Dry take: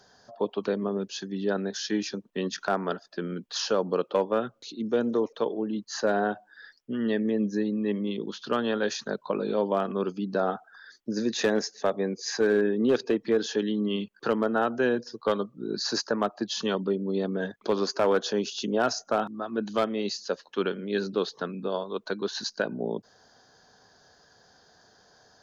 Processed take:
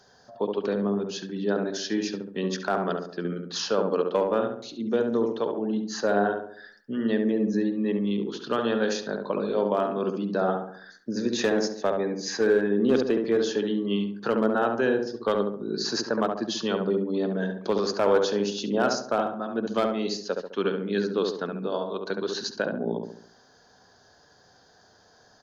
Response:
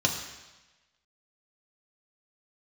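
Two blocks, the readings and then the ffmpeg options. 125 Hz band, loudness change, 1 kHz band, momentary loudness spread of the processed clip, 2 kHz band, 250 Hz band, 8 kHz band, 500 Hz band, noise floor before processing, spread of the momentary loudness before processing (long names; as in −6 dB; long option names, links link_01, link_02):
+2.5 dB, +2.0 dB, +1.5 dB, 8 LU, +1.0 dB, +2.0 dB, can't be measured, +2.0 dB, −61 dBFS, 8 LU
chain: -filter_complex "[0:a]asplit=2[link_01][link_02];[link_02]adelay=69,lowpass=frequency=1300:poles=1,volume=-3dB,asplit=2[link_03][link_04];[link_04]adelay=69,lowpass=frequency=1300:poles=1,volume=0.5,asplit=2[link_05][link_06];[link_06]adelay=69,lowpass=frequency=1300:poles=1,volume=0.5,asplit=2[link_07][link_08];[link_08]adelay=69,lowpass=frequency=1300:poles=1,volume=0.5,asplit=2[link_09][link_10];[link_10]adelay=69,lowpass=frequency=1300:poles=1,volume=0.5,asplit=2[link_11][link_12];[link_12]adelay=69,lowpass=frequency=1300:poles=1,volume=0.5,asplit=2[link_13][link_14];[link_14]adelay=69,lowpass=frequency=1300:poles=1,volume=0.5[link_15];[link_01][link_03][link_05][link_07][link_09][link_11][link_13][link_15]amix=inputs=8:normalize=0"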